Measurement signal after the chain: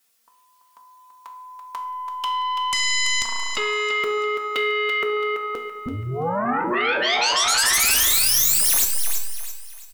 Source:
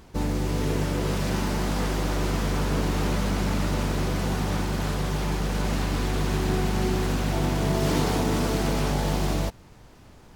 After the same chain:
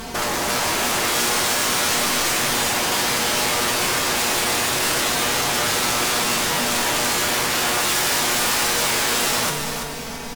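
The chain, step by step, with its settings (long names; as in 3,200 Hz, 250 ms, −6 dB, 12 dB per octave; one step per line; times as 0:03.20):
stylus tracing distortion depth 0.037 ms
comb filter 4.4 ms, depth 88%
in parallel at +3 dB: brickwall limiter −21 dBFS
on the sum: spring reverb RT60 1.6 s, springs 34 ms, chirp 55 ms, DRR 15 dB
soft clipping −7.5 dBFS
dynamic equaliser 8,400 Hz, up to +3 dB, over −39 dBFS, Q 1.4
downward compressor 6 to 1, threshold −18 dBFS
sine wavefolder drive 15 dB, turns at −12 dBFS
spectral tilt +1.5 dB per octave
mains-hum notches 60/120 Hz
tuned comb filter 120 Hz, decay 0.56 s, harmonics all, mix 80%
on a send: feedback echo with a high-pass in the loop 334 ms, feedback 37%, high-pass 320 Hz, level −7 dB
on the sum: level +2.5 dB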